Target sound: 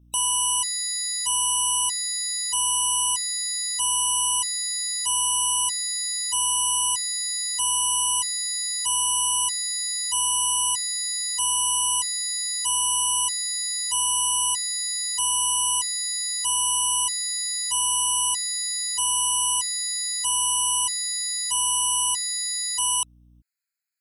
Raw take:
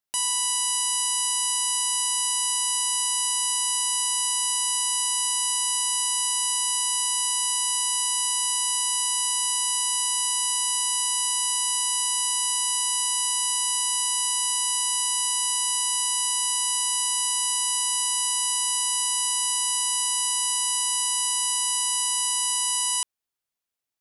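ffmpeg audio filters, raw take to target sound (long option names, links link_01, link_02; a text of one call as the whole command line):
ffmpeg -i in.wav -af "acontrast=59,aeval=exprs='val(0)+0.00316*(sin(2*PI*60*n/s)+sin(2*PI*2*60*n/s)/2+sin(2*PI*3*60*n/s)/3+sin(2*PI*4*60*n/s)/4+sin(2*PI*5*60*n/s)/5)':channel_layout=same,afftfilt=real='re*gt(sin(2*PI*0.79*pts/sr)*(1-2*mod(floor(b*sr/1024/1300),2)),0)':imag='im*gt(sin(2*PI*0.79*pts/sr)*(1-2*mod(floor(b*sr/1024/1300),2)),0)':win_size=1024:overlap=0.75,volume=-2.5dB" out.wav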